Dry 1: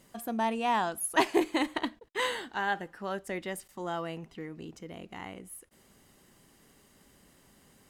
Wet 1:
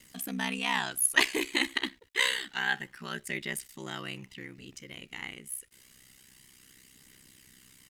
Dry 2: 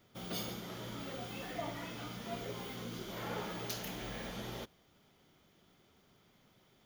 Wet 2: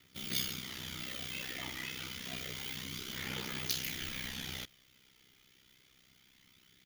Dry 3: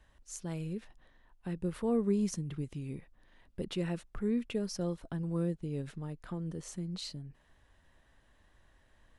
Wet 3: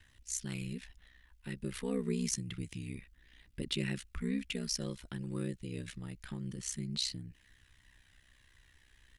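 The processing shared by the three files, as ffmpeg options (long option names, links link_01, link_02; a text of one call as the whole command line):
ffmpeg -i in.wav -af "aphaser=in_gain=1:out_gain=1:delay=2.5:decay=0.26:speed=0.28:type=triangular,firequalizer=gain_entry='entry(280,0);entry(600,-9);entry(2000,10)':delay=0.05:min_phase=1,aeval=exprs='val(0)*sin(2*PI*32*n/s)':channel_layout=same" out.wav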